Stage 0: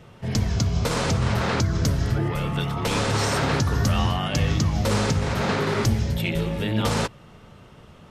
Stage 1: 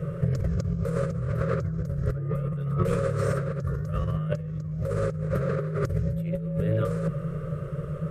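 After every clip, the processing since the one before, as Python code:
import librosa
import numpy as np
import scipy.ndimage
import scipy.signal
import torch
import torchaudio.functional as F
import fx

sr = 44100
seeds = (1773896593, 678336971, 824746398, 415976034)

y = fx.curve_eq(x, sr, hz=(110.0, 160.0, 230.0, 350.0, 570.0, 810.0, 1200.0, 3300.0, 5800.0, 8500.0), db=(0, 14, -24, -1, 8, -30, 0, -20, -18, -9))
y = fx.over_compress(y, sr, threshold_db=-29.0, ratio=-1.0)
y = y * librosa.db_to_amplitude(1.5)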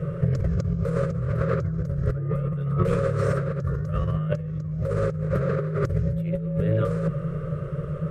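y = fx.high_shelf(x, sr, hz=8000.0, db=-11.5)
y = y * librosa.db_to_amplitude(2.5)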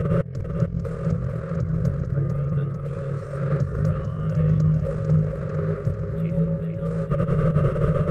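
y = fx.over_compress(x, sr, threshold_db=-30.0, ratio=-0.5)
y = fx.echo_feedback(y, sr, ms=446, feedback_pct=56, wet_db=-6.5)
y = y * librosa.db_to_amplitude(6.5)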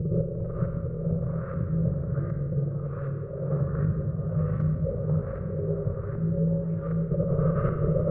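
y = fx.filter_lfo_lowpass(x, sr, shape='saw_up', hz=1.3, low_hz=290.0, high_hz=1800.0, q=1.5)
y = fx.rev_schroeder(y, sr, rt60_s=1.8, comb_ms=33, drr_db=3.0)
y = y * librosa.db_to_amplitude(-6.0)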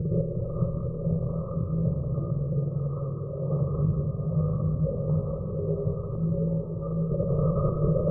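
y = fx.brickwall_lowpass(x, sr, high_hz=1300.0)
y = y + 10.0 ** (-8.5 / 20.0) * np.pad(y, (int(190 * sr / 1000.0), 0))[:len(y)]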